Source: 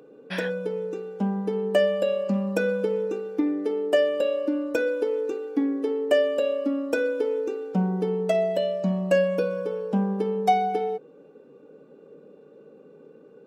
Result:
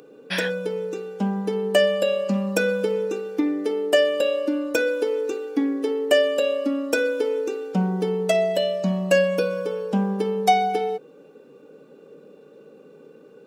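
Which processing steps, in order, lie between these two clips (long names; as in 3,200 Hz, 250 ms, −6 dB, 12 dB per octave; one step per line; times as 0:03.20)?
high-shelf EQ 2,100 Hz +10.5 dB
level +1.5 dB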